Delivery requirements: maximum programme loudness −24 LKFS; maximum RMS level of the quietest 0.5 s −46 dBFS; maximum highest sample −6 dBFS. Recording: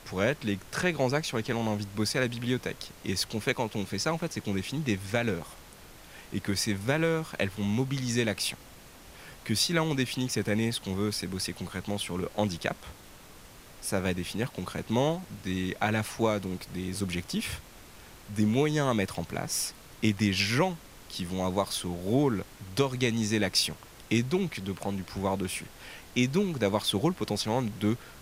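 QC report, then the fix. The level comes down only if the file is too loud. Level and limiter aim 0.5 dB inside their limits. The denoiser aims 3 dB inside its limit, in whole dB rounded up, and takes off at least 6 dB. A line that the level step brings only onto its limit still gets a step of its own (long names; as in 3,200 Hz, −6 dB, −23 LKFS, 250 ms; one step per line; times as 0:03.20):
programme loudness −30.0 LKFS: in spec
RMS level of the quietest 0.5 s −50 dBFS: in spec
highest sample −11.5 dBFS: in spec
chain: no processing needed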